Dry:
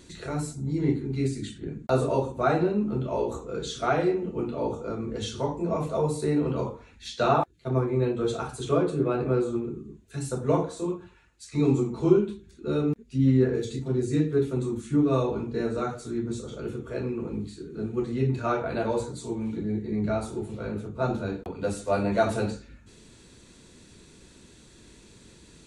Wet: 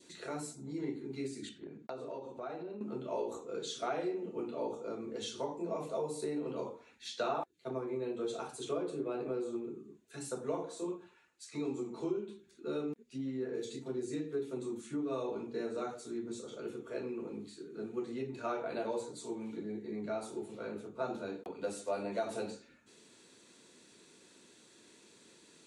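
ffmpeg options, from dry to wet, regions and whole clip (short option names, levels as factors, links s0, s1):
-filter_complex "[0:a]asettb=1/sr,asplit=3[s0][s1][s2];[s0]atrim=end=1.494[s3];[s1]atrim=start=1.49:end=2.81,asetpts=PTS-STARTPTS,afade=t=in:d=0.004:c=qsin,afade=t=out:st=1.316:d=0.004:c=qsin,lowpass=4800,equalizer=f=1600:w=1.6:g=-3,acompressor=threshold=0.0251:ratio=6:attack=3.2:release=140:knee=1:detection=peak[s4];[s2]atrim=start=2.806[s5];[s3][s4]acrossfade=d=0.004:c1=hsin:c2=qsin[s6];[s6][s5]acrossfade=d=0.004:c1=qsin:c2=hsin,acompressor=threshold=0.0562:ratio=4,highpass=290,adynamicequalizer=threshold=0.00316:dfrequency=1400:dqfactor=1.4:tfrequency=1400:tqfactor=1.4:attack=5:release=100:ratio=0.375:range=3:mode=cutabove:tftype=bell,volume=0.531"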